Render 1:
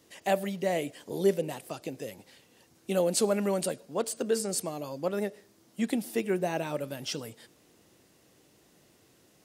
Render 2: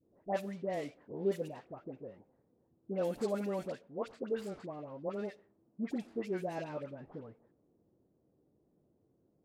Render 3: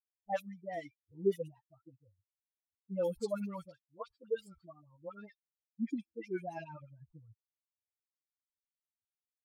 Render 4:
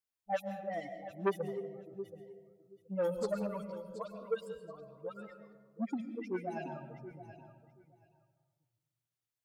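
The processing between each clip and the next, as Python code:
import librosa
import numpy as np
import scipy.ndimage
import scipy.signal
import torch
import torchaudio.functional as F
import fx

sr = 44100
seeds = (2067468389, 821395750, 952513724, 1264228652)

y1 = scipy.ndimage.median_filter(x, 15, mode='constant')
y1 = fx.env_lowpass(y1, sr, base_hz=520.0, full_db=-23.5)
y1 = fx.dispersion(y1, sr, late='highs', ms=70.0, hz=1100.0)
y1 = y1 * 10.0 ** (-7.5 / 20.0)
y2 = fx.bin_expand(y1, sr, power=3.0)
y2 = y2 * 10.0 ** (4.5 / 20.0)
y3 = fx.echo_feedback(y2, sr, ms=727, feedback_pct=17, wet_db=-13.5)
y3 = fx.rev_freeverb(y3, sr, rt60_s=1.3, hf_ratio=0.35, predelay_ms=85, drr_db=8.0)
y3 = fx.transformer_sat(y3, sr, knee_hz=850.0)
y3 = y3 * 10.0 ** (1.5 / 20.0)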